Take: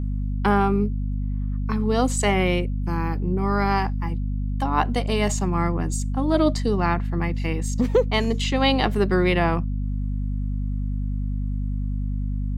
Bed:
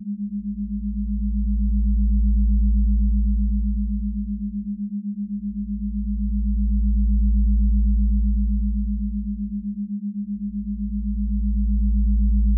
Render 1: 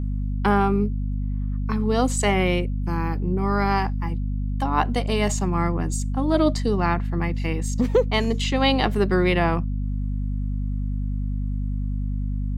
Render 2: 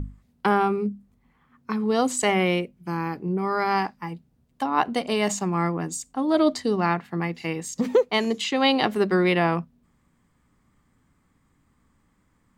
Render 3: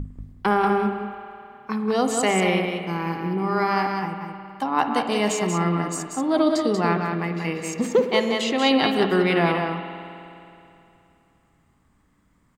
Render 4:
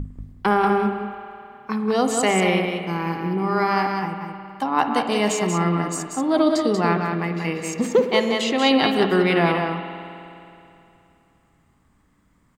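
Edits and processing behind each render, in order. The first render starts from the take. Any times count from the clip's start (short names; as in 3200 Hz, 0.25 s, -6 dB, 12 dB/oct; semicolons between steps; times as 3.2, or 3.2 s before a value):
nothing audible
notches 50/100/150/200/250 Hz
echo 0.187 s -5 dB; spring tank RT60 2.8 s, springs 52 ms, chirp 20 ms, DRR 7.5 dB
gain +1.5 dB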